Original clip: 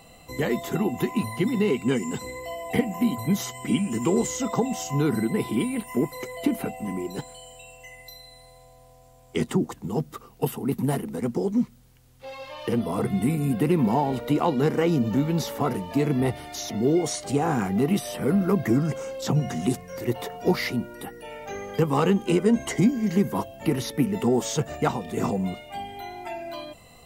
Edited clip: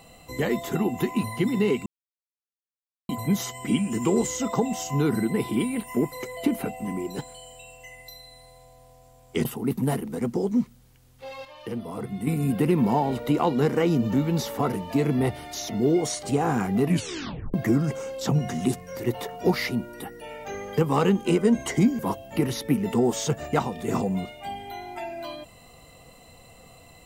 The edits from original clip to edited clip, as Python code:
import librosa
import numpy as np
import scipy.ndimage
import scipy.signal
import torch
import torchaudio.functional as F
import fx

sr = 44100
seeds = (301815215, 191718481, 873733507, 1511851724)

y = fx.edit(x, sr, fx.silence(start_s=1.86, length_s=1.23),
    fx.cut(start_s=9.45, length_s=1.01),
    fx.clip_gain(start_s=12.46, length_s=0.82, db=-7.5),
    fx.tape_stop(start_s=17.85, length_s=0.7),
    fx.cut(start_s=23.0, length_s=0.28), tone=tone)